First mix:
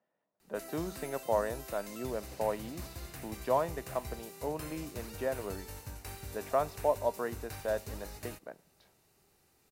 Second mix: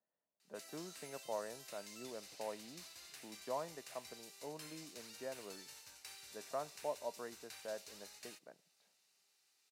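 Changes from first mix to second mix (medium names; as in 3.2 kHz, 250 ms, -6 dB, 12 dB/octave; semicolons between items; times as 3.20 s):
speech -12.0 dB; background: add band-pass filter 4.6 kHz, Q 0.93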